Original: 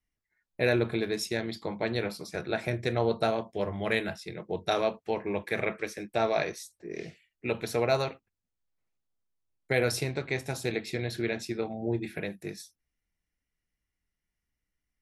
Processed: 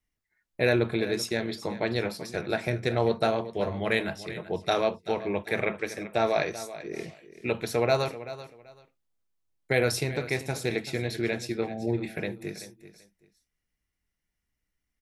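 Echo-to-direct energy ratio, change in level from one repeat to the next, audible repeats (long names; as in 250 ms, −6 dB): −14.5 dB, −13.0 dB, 2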